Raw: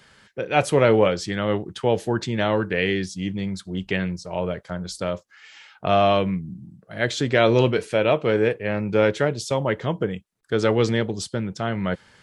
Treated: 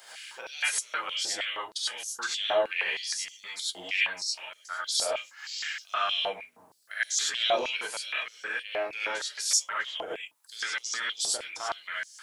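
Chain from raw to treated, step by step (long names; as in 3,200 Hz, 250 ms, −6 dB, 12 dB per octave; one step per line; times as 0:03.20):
sub-octave generator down 1 octave, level +2 dB
high-shelf EQ 8,500 Hz +8 dB
downward compressor 2 to 1, threshold −38 dBFS, peak gain reduction 14.5 dB
high-shelf EQ 3,300 Hz +11 dB
reverb whose tail is shaped and stops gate 120 ms rising, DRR −7 dB
bit-depth reduction 12 bits, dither none
high-pass on a step sequencer 6.4 Hz 700–6,000 Hz
level −6 dB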